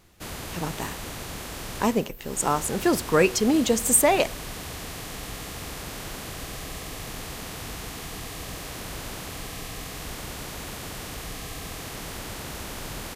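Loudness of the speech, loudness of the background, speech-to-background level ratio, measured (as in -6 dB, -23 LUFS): -23.0 LUFS, -35.5 LUFS, 12.5 dB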